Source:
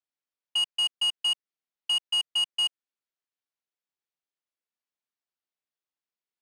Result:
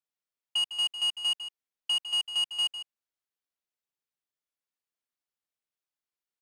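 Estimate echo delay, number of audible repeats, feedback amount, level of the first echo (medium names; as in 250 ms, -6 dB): 154 ms, 1, no regular repeats, -11.5 dB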